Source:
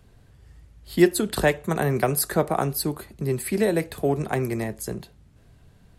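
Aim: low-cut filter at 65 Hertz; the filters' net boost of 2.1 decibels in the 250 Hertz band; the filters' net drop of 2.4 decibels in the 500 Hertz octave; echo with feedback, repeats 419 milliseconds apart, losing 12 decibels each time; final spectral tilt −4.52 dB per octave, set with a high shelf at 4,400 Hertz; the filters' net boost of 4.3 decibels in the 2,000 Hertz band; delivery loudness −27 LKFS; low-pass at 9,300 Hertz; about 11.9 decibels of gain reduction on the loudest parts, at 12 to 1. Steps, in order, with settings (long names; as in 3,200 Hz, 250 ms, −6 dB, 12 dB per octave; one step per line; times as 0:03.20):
high-pass filter 65 Hz
low-pass filter 9,300 Hz
parametric band 250 Hz +6 dB
parametric band 500 Hz −6.5 dB
parametric band 2,000 Hz +4 dB
high-shelf EQ 4,400 Hz +7.5 dB
downward compressor 12 to 1, threshold −22 dBFS
repeating echo 419 ms, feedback 25%, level −12 dB
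level +0.5 dB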